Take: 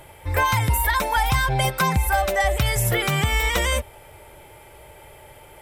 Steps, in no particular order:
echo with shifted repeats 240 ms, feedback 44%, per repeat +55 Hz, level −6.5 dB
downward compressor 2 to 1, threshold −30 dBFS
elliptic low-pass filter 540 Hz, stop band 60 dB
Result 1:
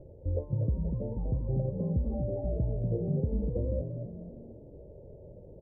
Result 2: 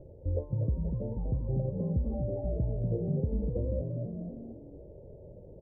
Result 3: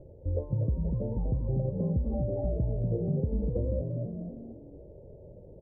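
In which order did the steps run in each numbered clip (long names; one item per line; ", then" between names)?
downward compressor, then echo with shifted repeats, then elliptic low-pass filter
echo with shifted repeats, then downward compressor, then elliptic low-pass filter
echo with shifted repeats, then elliptic low-pass filter, then downward compressor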